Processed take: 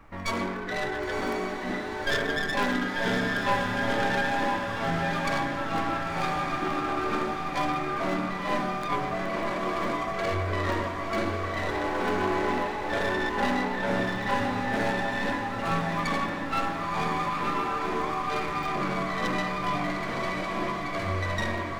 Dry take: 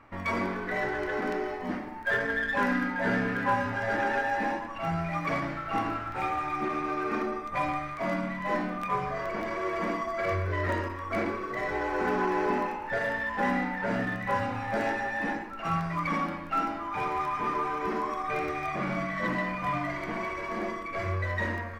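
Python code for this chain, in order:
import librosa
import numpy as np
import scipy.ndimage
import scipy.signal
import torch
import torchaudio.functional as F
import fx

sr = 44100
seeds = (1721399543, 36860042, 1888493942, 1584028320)

p1 = fx.tracing_dist(x, sr, depth_ms=0.18)
p2 = fx.dmg_noise_colour(p1, sr, seeds[0], colour='brown', level_db=-54.0)
y = p2 + fx.echo_diffused(p2, sr, ms=1014, feedback_pct=54, wet_db=-4, dry=0)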